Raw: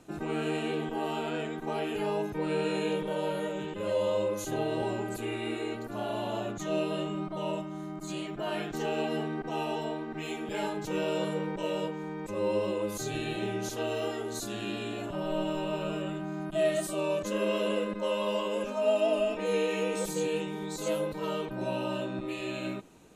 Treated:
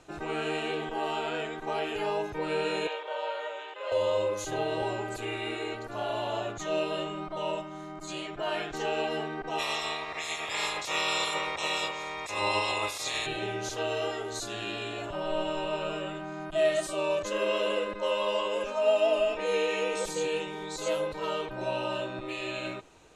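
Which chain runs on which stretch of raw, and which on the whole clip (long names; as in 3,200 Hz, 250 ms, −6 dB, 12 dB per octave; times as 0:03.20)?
0:02.87–0:03.92: high-pass filter 560 Hz 24 dB per octave + high-frequency loss of the air 110 metres
0:09.58–0:13.25: ceiling on every frequency bin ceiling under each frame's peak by 26 dB + notch comb filter 1,500 Hz
whole clip: low-pass filter 7,200 Hz 12 dB per octave; parametric band 210 Hz −14 dB 1.3 octaves; level +4 dB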